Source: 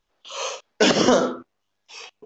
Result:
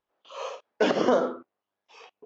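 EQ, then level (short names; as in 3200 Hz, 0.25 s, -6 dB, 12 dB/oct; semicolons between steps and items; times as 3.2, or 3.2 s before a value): band-pass 630 Hz, Q 0.54; -3.5 dB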